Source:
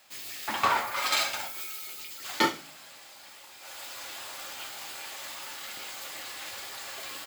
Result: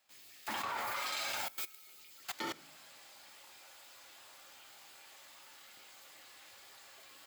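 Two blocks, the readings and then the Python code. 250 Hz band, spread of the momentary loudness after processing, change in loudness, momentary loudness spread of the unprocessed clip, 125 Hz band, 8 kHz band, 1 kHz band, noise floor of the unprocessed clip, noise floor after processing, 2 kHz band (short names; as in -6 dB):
-13.0 dB, 18 LU, -6.5 dB, 20 LU, -11.5 dB, -10.5 dB, -11.5 dB, -50 dBFS, -57 dBFS, -10.5 dB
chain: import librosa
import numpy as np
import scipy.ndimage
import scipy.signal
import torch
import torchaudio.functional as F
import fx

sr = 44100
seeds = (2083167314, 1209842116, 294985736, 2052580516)

y = fx.level_steps(x, sr, step_db=19)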